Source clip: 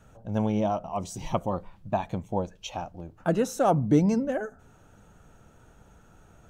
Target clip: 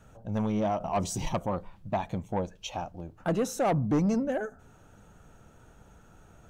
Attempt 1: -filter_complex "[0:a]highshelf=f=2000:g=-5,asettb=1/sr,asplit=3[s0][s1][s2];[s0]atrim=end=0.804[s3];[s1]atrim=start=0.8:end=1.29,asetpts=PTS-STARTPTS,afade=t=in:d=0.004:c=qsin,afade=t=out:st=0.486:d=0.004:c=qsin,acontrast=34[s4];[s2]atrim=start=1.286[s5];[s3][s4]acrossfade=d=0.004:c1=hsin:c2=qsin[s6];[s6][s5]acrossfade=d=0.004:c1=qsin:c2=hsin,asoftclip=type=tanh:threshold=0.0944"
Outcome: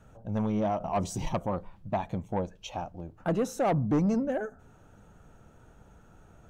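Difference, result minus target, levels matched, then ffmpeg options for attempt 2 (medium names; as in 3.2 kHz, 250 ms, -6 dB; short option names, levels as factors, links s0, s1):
4 kHz band -3.5 dB
-filter_complex "[0:a]asettb=1/sr,asplit=3[s0][s1][s2];[s0]atrim=end=0.804[s3];[s1]atrim=start=0.8:end=1.29,asetpts=PTS-STARTPTS,afade=t=in:d=0.004:c=qsin,afade=t=out:st=0.486:d=0.004:c=qsin,acontrast=34[s4];[s2]atrim=start=1.286[s5];[s3][s4]acrossfade=d=0.004:c1=hsin:c2=qsin[s6];[s6][s5]acrossfade=d=0.004:c1=qsin:c2=hsin,asoftclip=type=tanh:threshold=0.0944"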